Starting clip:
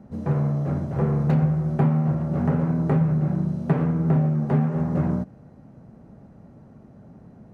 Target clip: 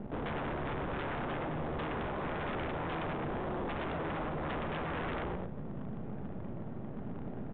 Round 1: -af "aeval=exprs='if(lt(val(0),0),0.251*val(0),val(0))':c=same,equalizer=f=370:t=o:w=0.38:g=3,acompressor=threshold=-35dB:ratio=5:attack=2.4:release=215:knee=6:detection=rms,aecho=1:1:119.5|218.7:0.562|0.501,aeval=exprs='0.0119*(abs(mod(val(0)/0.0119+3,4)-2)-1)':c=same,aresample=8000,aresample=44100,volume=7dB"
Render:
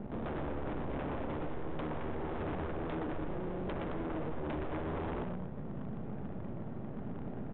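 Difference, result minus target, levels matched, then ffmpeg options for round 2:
compressor: peak gain reduction +5.5 dB
-af "aeval=exprs='if(lt(val(0),0),0.251*val(0),val(0))':c=same,equalizer=f=370:t=o:w=0.38:g=3,acompressor=threshold=-28dB:ratio=5:attack=2.4:release=215:knee=6:detection=rms,aecho=1:1:119.5|218.7:0.562|0.501,aeval=exprs='0.0119*(abs(mod(val(0)/0.0119+3,4)-2)-1)':c=same,aresample=8000,aresample=44100,volume=7dB"

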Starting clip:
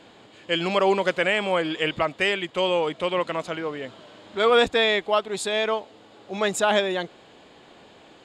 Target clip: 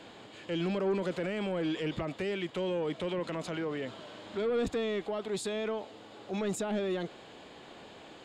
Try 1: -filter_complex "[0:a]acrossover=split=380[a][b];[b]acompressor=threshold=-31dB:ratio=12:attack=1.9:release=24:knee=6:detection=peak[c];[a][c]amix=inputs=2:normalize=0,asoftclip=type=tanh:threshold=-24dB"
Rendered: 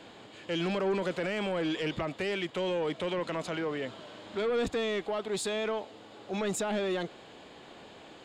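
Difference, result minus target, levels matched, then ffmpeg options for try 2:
compressor: peak gain reduction -5.5 dB
-filter_complex "[0:a]acrossover=split=380[a][b];[b]acompressor=threshold=-37dB:ratio=12:attack=1.9:release=24:knee=6:detection=peak[c];[a][c]amix=inputs=2:normalize=0,asoftclip=type=tanh:threshold=-24dB"

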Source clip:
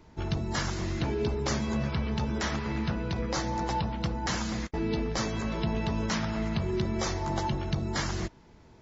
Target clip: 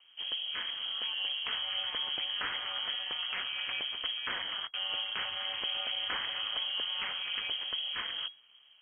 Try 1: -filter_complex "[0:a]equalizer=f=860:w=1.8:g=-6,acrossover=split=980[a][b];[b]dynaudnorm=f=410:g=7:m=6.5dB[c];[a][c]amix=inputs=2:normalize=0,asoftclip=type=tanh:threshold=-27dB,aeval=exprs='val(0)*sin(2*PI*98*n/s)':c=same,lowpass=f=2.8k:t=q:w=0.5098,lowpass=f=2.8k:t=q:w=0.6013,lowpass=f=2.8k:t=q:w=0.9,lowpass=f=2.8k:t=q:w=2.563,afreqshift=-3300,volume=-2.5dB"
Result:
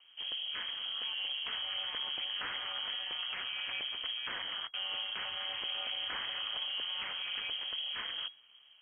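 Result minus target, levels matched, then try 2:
soft clip: distortion +16 dB
-filter_complex "[0:a]equalizer=f=860:w=1.8:g=-6,acrossover=split=980[a][b];[b]dynaudnorm=f=410:g=7:m=6.5dB[c];[a][c]amix=inputs=2:normalize=0,asoftclip=type=tanh:threshold=-15dB,aeval=exprs='val(0)*sin(2*PI*98*n/s)':c=same,lowpass=f=2.8k:t=q:w=0.5098,lowpass=f=2.8k:t=q:w=0.6013,lowpass=f=2.8k:t=q:w=0.9,lowpass=f=2.8k:t=q:w=2.563,afreqshift=-3300,volume=-2.5dB"

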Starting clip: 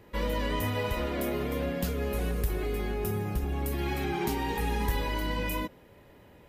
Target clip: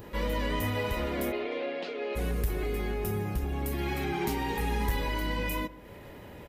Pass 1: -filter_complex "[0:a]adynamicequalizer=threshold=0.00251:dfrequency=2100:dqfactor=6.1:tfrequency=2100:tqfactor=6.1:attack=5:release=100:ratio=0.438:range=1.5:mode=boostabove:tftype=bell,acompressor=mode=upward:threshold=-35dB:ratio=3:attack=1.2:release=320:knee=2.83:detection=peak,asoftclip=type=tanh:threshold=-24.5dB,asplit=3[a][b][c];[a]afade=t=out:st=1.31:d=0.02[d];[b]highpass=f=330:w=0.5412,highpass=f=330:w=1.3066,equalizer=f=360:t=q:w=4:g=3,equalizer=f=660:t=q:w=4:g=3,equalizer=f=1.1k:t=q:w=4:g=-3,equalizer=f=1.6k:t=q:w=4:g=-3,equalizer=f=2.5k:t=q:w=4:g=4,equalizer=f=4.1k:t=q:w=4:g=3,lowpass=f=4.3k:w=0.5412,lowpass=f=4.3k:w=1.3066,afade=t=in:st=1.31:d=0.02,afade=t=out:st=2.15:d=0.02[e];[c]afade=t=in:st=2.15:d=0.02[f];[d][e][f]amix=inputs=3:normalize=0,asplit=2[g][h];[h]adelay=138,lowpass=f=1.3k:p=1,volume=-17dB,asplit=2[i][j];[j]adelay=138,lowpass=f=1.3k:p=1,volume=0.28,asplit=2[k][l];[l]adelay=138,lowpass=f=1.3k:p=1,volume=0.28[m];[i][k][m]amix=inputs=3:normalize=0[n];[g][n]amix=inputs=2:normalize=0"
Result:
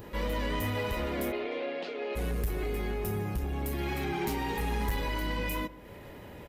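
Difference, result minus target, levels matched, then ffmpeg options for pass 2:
soft clip: distortion +10 dB
-filter_complex "[0:a]adynamicequalizer=threshold=0.00251:dfrequency=2100:dqfactor=6.1:tfrequency=2100:tqfactor=6.1:attack=5:release=100:ratio=0.438:range=1.5:mode=boostabove:tftype=bell,acompressor=mode=upward:threshold=-35dB:ratio=3:attack=1.2:release=320:knee=2.83:detection=peak,asoftclip=type=tanh:threshold=-18dB,asplit=3[a][b][c];[a]afade=t=out:st=1.31:d=0.02[d];[b]highpass=f=330:w=0.5412,highpass=f=330:w=1.3066,equalizer=f=360:t=q:w=4:g=3,equalizer=f=660:t=q:w=4:g=3,equalizer=f=1.1k:t=q:w=4:g=-3,equalizer=f=1.6k:t=q:w=4:g=-3,equalizer=f=2.5k:t=q:w=4:g=4,equalizer=f=4.1k:t=q:w=4:g=3,lowpass=f=4.3k:w=0.5412,lowpass=f=4.3k:w=1.3066,afade=t=in:st=1.31:d=0.02,afade=t=out:st=2.15:d=0.02[e];[c]afade=t=in:st=2.15:d=0.02[f];[d][e][f]amix=inputs=3:normalize=0,asplit=2[g][h];[h]adelay=138,lowpass=f=1.3k:p=1,volume=-17dB,asplit=2[i][j];[j]adelay=138,lowpass=f=1.3k:p=1,volume=0.28,asplit=2[k][l];[l]adelay=138,lowpass=f=1.3k:p=1,volume=0.28[m];[i][k][m]amix=inputs=3:normalize=0[n];[g][n]amix=inputs=2:normalize=0"

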